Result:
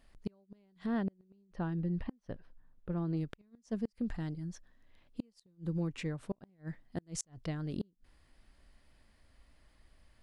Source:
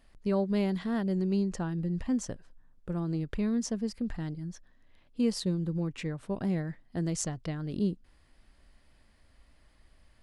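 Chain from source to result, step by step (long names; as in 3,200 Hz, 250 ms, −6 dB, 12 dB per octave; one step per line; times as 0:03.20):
gate with flip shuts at −22 dBFS, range −36 dB
0:00.86–0:03.17: moving average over 6 samples
level −2.5 dB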